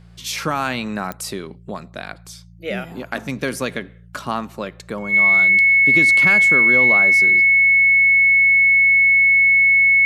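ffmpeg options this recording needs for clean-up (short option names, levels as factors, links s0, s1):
-af "adeclick=t=4,bandreject=f=57.6:t=h:w=4,bandreject=f=115.2:t=h:w=4,bandreject=f=172.8:t=h:w=4,bandreject=f=2200:w=30"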